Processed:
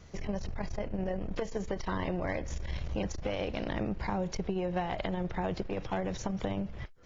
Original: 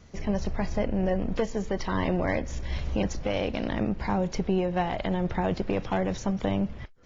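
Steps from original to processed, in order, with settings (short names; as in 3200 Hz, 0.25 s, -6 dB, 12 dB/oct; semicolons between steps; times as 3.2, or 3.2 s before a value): bell 240 Hz -8 dB 0.25 oct; compressor, threshold -28 dBFS, peak gain reduction 7 dB; core saturation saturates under 110 Hz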